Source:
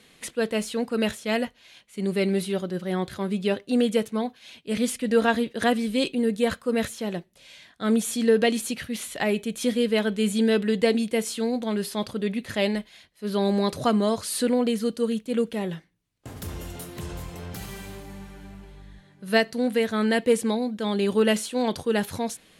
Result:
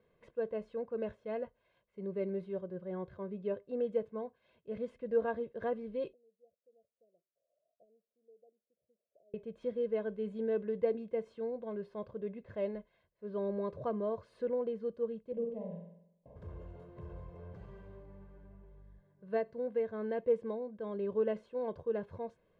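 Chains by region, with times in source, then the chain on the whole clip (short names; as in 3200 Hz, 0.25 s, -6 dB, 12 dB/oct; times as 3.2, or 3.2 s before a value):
6.13–9.34 auto-wah 580–3400 Hz, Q 5.9, up, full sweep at -23.5 dBFS + brick-wall FIR band-stop 730–9800 Hz
15.32–16.36 LPF 1600 Hz 6 dB/oct + fixed phaser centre 370 Hz, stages 6 + flutter echo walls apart 8.1 m, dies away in 0.77 s
whole clip: Bessel low-pass 630 Hz, order 2; low shelf 350 Hz -5.5 dB; comb 1.9 ms, depth 64%; gain -8.5 dB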